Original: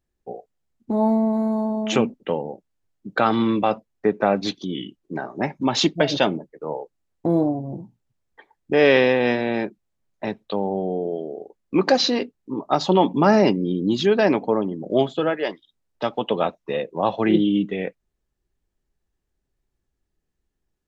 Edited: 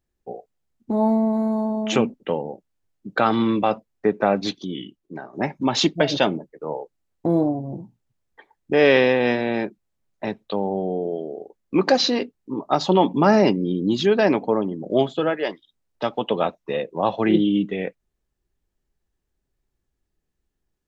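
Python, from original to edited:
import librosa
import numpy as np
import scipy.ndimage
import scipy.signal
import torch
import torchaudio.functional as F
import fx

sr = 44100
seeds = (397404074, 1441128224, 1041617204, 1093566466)

y = fx.edit(x, sr, fx.fade_out_to(start_s=4.44, length_s=0.89, floor_db=-8.0), tone=tone)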